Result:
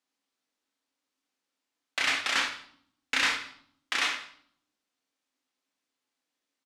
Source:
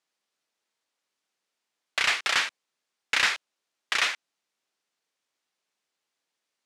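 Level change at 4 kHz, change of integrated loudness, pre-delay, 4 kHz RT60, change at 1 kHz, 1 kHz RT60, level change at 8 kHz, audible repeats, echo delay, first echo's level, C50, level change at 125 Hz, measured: −2.5 dB, −2.5 dB, 4 ms, 0.55 s, −2.0 dB, 0.60 s, −2.5 dB, 1, 164 ms, −22.0 dB, 8.5 dB, can't be measured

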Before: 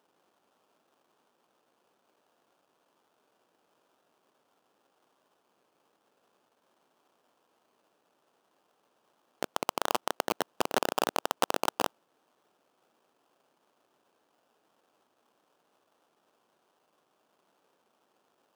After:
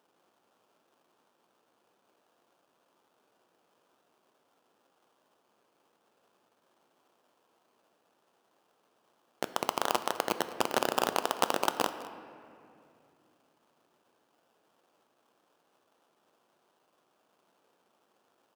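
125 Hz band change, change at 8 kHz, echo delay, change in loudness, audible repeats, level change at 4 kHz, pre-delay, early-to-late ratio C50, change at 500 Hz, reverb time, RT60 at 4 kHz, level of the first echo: +1.0 dB, 0.0 dB, 206 ms, +0.5 dB, 1, +0.5 dB, 6 ms, 10.5 dB, +0.5 dB, 2.6 s, 1.6 s, −18.5 dB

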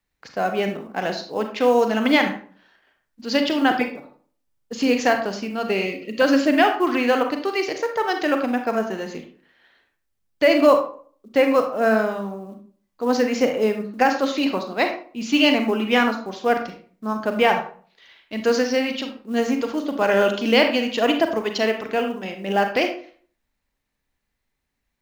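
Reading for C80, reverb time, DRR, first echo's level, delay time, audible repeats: 11.5 dB, 0.45 s, 5.0 dB, no echo audible, no echo audible, no echo audible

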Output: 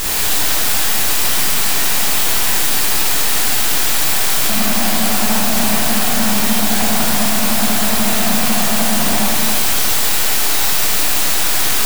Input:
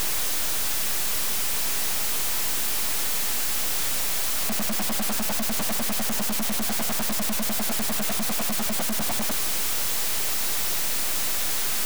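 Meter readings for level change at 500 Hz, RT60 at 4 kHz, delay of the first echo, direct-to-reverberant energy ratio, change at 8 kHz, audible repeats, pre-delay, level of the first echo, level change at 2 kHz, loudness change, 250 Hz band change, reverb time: +11.0 dB, 1.2 s, no echo audible, −7.5 dB, +9.5 dB, no echo audible, 22 ms, no echo audible, +12.0 dB, +10.0 dB, +12.0 dB, 2.0 s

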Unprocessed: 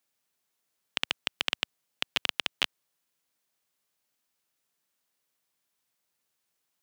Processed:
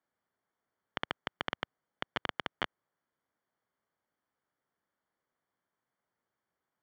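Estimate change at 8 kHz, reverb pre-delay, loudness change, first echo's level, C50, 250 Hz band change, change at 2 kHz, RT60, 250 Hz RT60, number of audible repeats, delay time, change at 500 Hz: −20.5 dB, no reverb audible, −8.0 dB, no echo audible, no reverb audible, +2.0 dB, −5.5 dB, no reverb audible, no reverb audible, no echo audible, no echo audible, +2.0 dB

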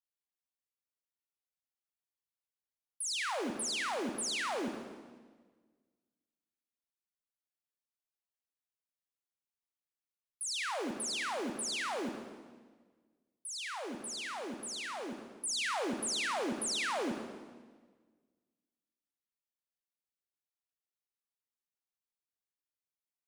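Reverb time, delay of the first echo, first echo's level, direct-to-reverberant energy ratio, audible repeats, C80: 1.5 s, no echo audible, no echo audible, 4.5 dB, no echo audible, 7.0 dB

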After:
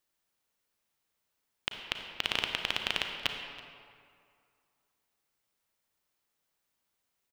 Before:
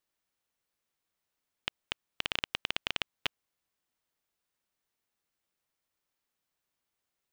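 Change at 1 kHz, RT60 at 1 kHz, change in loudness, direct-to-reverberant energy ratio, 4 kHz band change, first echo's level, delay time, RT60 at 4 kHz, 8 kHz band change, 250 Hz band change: +3.5 dB, 2.4 s, +3.0 dB, 4.0 dB, +3.0 dB, −20.0 dB, 328 ms, 1.3 s, +4.0 dB, +2.5 dB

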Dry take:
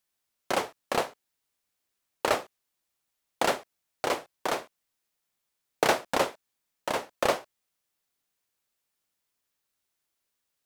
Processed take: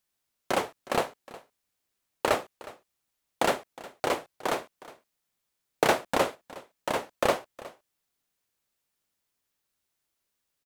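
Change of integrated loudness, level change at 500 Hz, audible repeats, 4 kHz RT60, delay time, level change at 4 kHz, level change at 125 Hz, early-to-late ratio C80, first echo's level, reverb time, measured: +0.5 dB, +1.0 dB, 1, no reverb audible, 363 ms, −1.0 dB, +3.0 dB, no reverb audible, −19.0 dB, no reverb audible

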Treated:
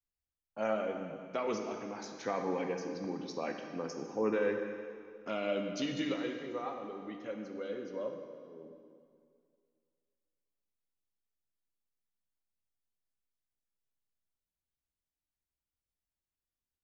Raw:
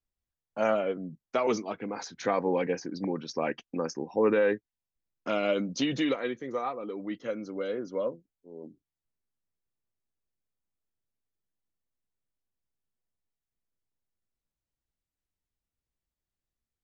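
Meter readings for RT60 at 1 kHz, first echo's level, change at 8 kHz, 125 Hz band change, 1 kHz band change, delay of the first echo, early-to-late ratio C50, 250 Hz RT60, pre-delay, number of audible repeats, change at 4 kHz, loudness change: 2.2 s, no echo audible, can't be measured, −6.5 dB, −6.5 dB, no echo audible, 4.5 dB, 2.2 s, 6 ms, no echo audible, −6.5 dB, −6.5 dB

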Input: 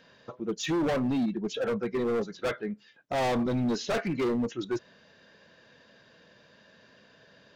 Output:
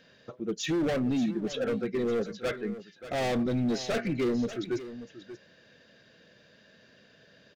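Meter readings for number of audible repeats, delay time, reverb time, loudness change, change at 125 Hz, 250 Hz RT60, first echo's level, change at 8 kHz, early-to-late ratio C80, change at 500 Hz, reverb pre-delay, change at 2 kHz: 1, 584 ms, no reverb audible, −0.5 dB, 0.0 dB, no reverb audible, −13.5 dB, 0.0 dB, no reverb audible, −0.5 dB, no reverb audible, −1.0 dB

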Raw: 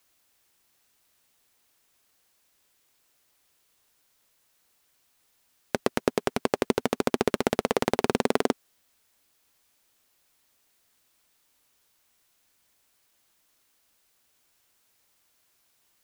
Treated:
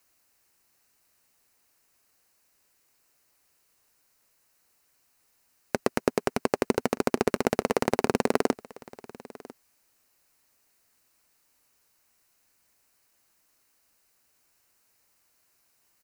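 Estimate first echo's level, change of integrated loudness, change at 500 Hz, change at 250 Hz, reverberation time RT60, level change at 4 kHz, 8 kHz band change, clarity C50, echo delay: −21.0 dB, 0.0 dB, 0.0 dB, 0.0 dB, no reverb audible, −3.5 dB, 0.0 dB, no reverb audible, 998 ms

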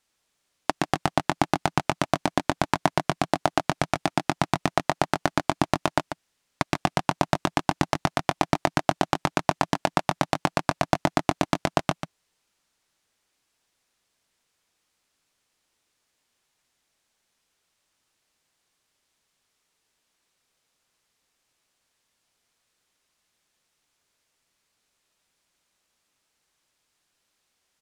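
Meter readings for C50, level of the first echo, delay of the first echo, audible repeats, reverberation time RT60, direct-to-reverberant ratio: no reverb audible, −9.5 dB, 141 ms, 1, no reverb audible, no reverb audible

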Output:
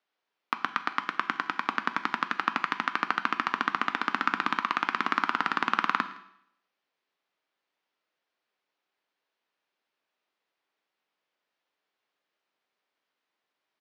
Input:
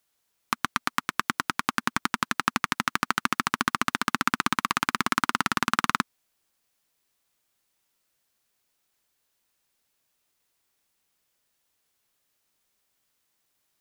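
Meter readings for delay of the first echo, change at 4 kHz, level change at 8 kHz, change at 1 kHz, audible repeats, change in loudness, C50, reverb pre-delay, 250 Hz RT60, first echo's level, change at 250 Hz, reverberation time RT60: 163 ms, −6.0 dB, below −15 dB, −1.0 dB, 1, −2.0 dB, 13.5 dB, 6 ms, 0.75 s, −23.0 dB, −6.0 dB, 0.70 s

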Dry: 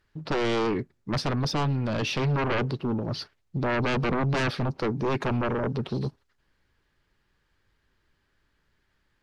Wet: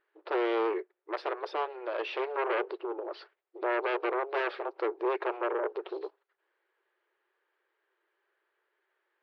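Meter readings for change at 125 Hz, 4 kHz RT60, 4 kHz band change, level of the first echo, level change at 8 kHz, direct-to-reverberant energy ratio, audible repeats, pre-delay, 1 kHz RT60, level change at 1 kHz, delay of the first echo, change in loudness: below −40 dB, no reverb audible, −11.0 dB, no echo audible, below −25 dB, no reverb audible, no echo audible, no reverb audible, no reverb audible, −2.0 dB, no echo audible, −5.0 dB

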